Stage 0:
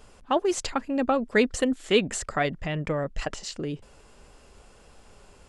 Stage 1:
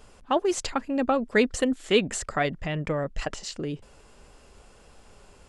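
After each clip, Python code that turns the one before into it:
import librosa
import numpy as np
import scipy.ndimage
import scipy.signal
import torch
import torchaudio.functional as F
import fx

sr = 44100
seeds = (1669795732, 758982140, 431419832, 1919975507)

y = x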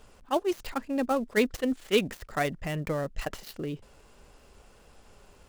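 y = fx.dead_time(x, sr, dead_ms=0.079)
y = fx.attack_slew(y, sr, db_per_s=580.0)
y = y * librosa.db_to_amplitude(-2.5)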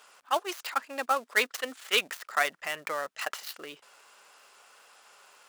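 y = scipy.signal.sosfilt(scipy.signal.butter(2, 940.0, 'highpass', fs=sr, output='sos'), x)
y = fx.peak_eq(y, sr, hz=1300.0, db=3.5, octaves=0.52)
y = y * librosa.db_to_amplitude(5.0)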